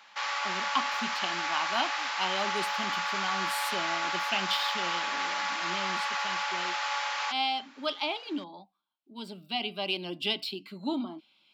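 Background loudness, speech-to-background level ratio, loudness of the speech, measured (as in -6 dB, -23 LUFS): -30.5 LUFS, -4.0 dB, -34.5 LUFS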